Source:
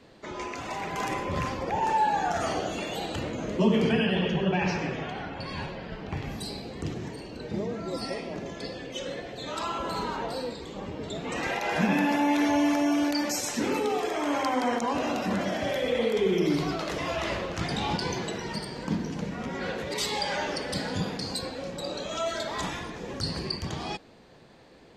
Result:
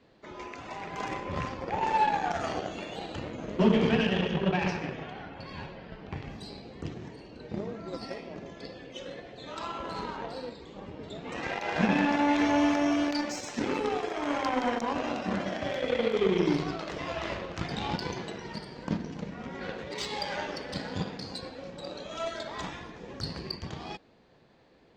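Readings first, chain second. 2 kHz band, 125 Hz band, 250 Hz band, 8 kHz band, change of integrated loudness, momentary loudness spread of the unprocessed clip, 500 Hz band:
-2.5 dB, -2.5 dB, -2.0 dB, -9.0 dB, -2.0 dB, 12 LU, -2.5 dB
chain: Chebyshev shaper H 7 -22 dB, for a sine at -12 dBFS; boxcar filter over 4 samples

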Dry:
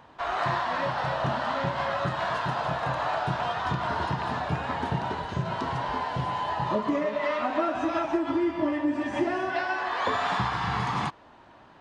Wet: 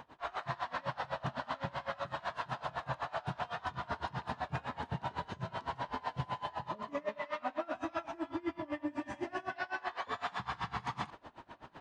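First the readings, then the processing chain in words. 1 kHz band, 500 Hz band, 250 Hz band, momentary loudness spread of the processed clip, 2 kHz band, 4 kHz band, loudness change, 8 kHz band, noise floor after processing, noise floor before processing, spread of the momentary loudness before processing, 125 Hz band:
-11.0 dB, -12.0 dB, -13.0 dB, 2 LU, -10.5 dB, -10.5 dB, -11.5 dB, no reading, -60 dBFS, -53 dBFS, 3 LU, -11.0 dB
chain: dynamic bell 350 Hz, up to -5 dB, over -38 dBFS, Q 1.5; reverse; compression 6:1, threshold -36 dBFS, peak gain reduction 13 dB; reverse; logarithmic tremolo 7.9 Hz, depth 24 dB; trim +5 dB

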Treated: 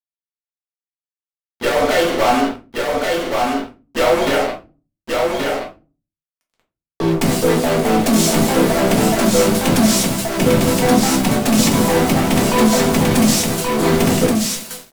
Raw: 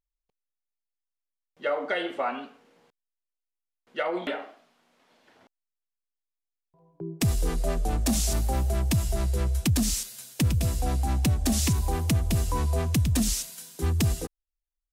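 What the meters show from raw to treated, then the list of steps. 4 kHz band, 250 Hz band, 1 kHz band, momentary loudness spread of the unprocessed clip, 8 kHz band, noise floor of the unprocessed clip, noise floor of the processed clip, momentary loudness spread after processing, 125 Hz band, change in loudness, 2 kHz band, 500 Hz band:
+14.0 dB, +16.0 dB, +16.5 dB, 10 LU, +11.0 dB, under -85 dBFS, under -85 dBFS, 8 LU, +4.5 dB, +11.0 dB, +15.5 dB, +18.0 dB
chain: block-companded coder 5-bit; high-pass 180 Hz 24 dB/octave; treble shelf 3.5 kHz -9.5 dB; hum notches 50/100/150/200/250 Hz; in parallel at +1.5 dB: compression, threshold -37 dBFS, peak gain reduction 14 dB; on the sum: fuzz box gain 39 dB, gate -43 dBFS; on a send: delay 1127 ms -3.5 dB; on the sum: simulated room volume 130 m³, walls furnished, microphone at 1.6 m; trim -4.5 dB

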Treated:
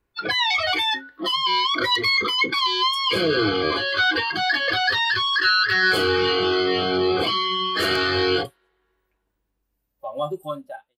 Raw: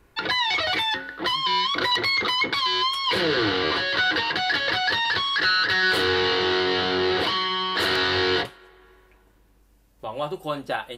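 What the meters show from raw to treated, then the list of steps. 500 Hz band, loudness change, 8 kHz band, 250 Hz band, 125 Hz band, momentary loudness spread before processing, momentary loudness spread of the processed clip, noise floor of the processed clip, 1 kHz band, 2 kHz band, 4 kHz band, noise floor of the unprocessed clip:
+2.5 dB, +2.0 dB, +1.0 dB, +2.5 dB, +2.0 dB, 8 LU, 10 LU, -76 dBFS, +1.5 dB, +1.5 dB, +1.5 dB, -59 dBFS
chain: fade out at the end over 0.67 s; spectral noise reduction 20 dB; trim +3 dB

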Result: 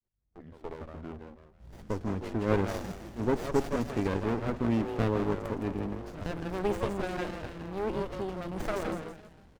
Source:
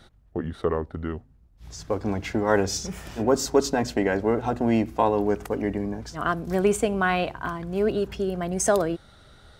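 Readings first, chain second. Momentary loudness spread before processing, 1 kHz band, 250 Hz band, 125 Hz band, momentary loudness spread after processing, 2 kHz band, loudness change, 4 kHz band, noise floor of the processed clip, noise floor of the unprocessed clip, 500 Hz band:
11 LU, -9.5 dB, -6.0 dB, -3.0 dB, 15 LU, -10.0 dB, -7.0 dB, -11.0 dB, -59 dBFS, -56 dBFS, -8.5 dB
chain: fade-in on the opening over 1.53 s; frequency-shifting echo 164 ms, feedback 33%, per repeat +150 Hz, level -6.5 dB; sliding maximum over 33 samples; trim -6.5 dB

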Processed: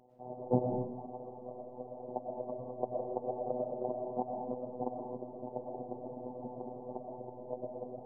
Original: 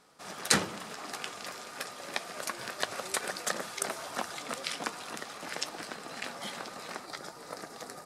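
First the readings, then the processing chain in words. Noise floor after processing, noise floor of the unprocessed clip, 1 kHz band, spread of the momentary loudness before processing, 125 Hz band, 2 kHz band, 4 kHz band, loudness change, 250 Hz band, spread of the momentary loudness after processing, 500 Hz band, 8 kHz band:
-49 dBFS, -48 dBFS, -2.5 dB, 10 LU, +4.5 dB, under -40 dB, under -40 dB, -4.0 dB, +3.5 dB, 10 LU, +5.0 dB, under -40 dB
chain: steep low-pass 850 Hz 72 dB/octave; reverb removal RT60 1.1 s; robot voice 125 Hz; algorithmic reverb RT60 0.9 s, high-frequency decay 0.8×, pre-delay 75 ms, DRR 0.5 dB; trim +6 dB

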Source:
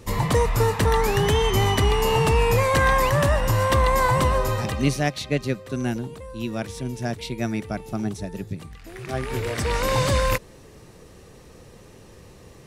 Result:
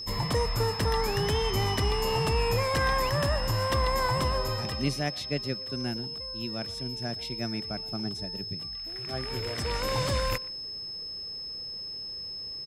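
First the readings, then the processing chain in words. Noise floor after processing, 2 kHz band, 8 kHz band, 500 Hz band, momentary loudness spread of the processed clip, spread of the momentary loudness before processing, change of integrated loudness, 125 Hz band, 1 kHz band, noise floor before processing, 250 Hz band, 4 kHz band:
-38 dBFS, -7.5 dB, -7.5 dB, -7.5 dB, 9 LU, 12 LU, -7.0 dB, -7.5 dB, -7.5 dB, -47 dBFS, -7.5 dB, +0.5 dB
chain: speakerphone echo 120 ms, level -20 dB; whistle 5.2 kHz -28 dBFS; trim -7.5 dB

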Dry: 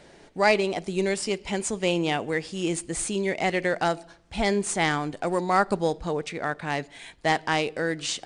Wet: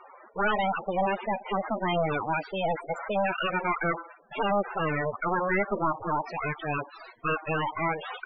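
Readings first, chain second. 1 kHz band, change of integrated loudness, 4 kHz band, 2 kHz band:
0.0 dB, -3.0 dB, -8.0 dB, -2.5 dB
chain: steep low-pass 9.1 kHz 36 dB/octave; full-wave rectifier; overdrive pedal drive 28 dB, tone 3 kHz, clips at -7 dBFS; loudest bins only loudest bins 16; trim -7.5 dB

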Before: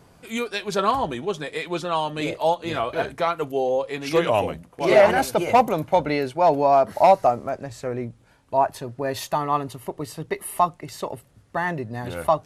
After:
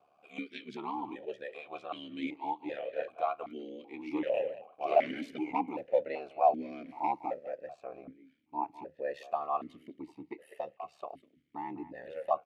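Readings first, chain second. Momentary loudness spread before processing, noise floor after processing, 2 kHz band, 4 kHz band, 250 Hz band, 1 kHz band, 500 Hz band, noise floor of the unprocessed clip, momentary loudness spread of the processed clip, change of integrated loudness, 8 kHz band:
15 LU, -70 dBFS, -16.5 dB, -18.0 dB, -11.0 dB, -12.5 dB, -13.5 dB, -56 dBFS, 18 LU, -13.0 dB, under -30 dB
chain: ring modulator 36 Hz; speakerphone echo 200 ms, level -14 dB; stepped vowel filter 2.6 Hz

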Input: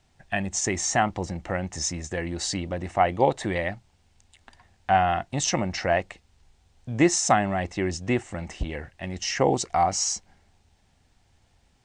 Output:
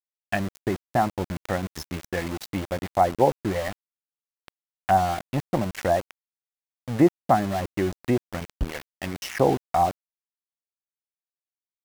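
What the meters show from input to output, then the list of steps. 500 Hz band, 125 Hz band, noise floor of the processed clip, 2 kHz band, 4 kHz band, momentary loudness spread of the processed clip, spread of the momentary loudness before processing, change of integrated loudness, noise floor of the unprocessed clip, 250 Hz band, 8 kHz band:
+1.5 dB, +1.0 dB, under -85 dBFS, -3.5 dB, -7.0 dB, 12 LU, 12 LU, 0.0 dB, -65 dBFS, +1.5 dB, -15.0 dB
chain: low-pass that closes with the level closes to 1 kHz, closed at -22 dBFS; reverb removal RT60 0.52 s; small samples zeroed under -32 dBFS; trim +2.5 dB

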